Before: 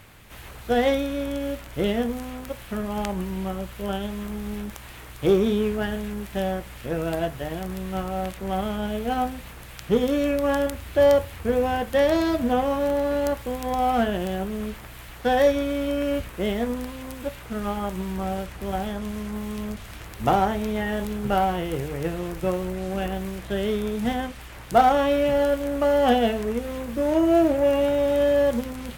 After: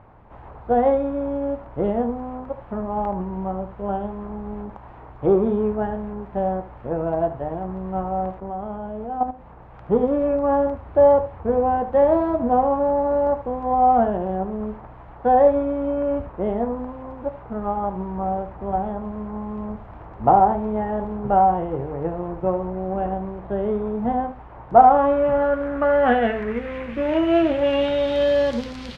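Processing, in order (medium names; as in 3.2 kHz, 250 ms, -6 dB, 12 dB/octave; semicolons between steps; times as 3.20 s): 8.40–9.74 s: level held to a coarse grid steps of 11 dB; delay 75 ms -13.5 dB; low-pass sweep 890 Hz -> 4.6 kHz, 24.66–28.49 s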